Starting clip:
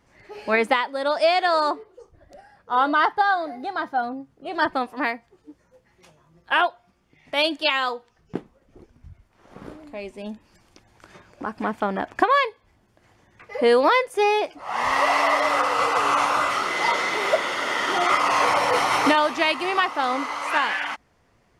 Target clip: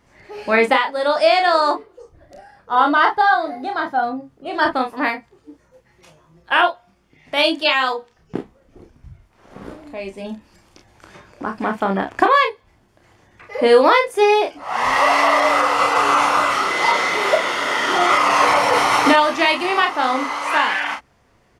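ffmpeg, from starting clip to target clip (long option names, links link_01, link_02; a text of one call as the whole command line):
ffmpeg -i in.wav -af "aecho=1:1:31|46:0.531|0.266,volume=3.5dB" out.wav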